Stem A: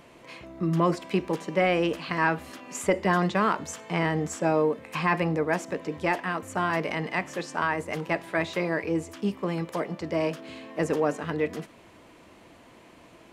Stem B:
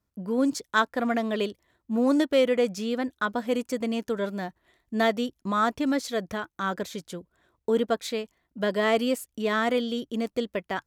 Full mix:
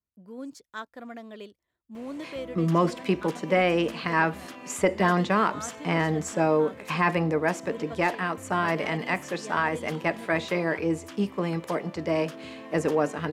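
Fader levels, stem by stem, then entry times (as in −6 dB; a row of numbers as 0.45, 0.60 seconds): +1.0, −15.0 decibels; 1.95, 0.00 seconds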